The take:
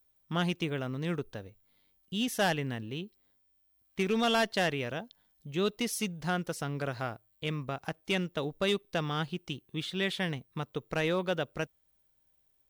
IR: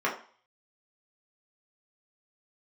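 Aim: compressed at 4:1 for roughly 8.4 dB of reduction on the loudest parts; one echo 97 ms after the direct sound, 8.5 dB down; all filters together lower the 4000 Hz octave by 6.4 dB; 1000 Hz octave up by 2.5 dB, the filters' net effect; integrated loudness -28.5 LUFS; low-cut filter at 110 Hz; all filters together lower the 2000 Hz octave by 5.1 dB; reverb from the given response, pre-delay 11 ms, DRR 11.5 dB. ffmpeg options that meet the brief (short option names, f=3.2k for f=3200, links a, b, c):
-filter_complex "[0:a]highpass=110,equalizer=f=1k:t=o:g=6,equalizer=f=2k:t=o:g=-8,equalizer=f=4k:t=o:g=-5.5,acompressor=threshold=-33dB:ratio=4,aecho=1:1:97:0.376,asplit=2[a][b];[1:a]atrim=start_sample=2205,adelay=11[c];[b][c]afir=irnorm=-1:irlink=0,volume=-23.5dB[d];[a][d]amix=inputs=2:normalize=0,volume=9.5dB"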